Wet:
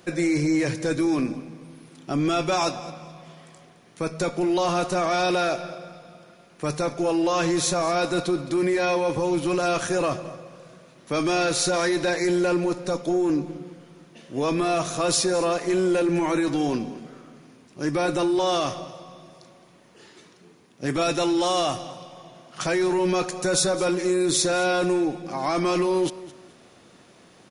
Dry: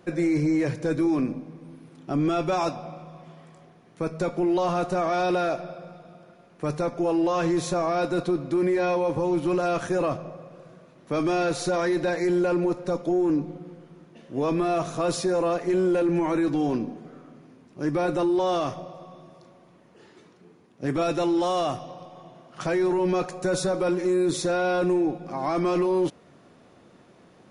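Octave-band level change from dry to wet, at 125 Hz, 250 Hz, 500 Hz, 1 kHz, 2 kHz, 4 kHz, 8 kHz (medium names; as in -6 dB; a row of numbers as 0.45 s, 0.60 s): 0.0 dB, +0.5 dB, +0.5 dB, +2.0 dB, +5.0 dB, +9.0 dB, +10.5 dB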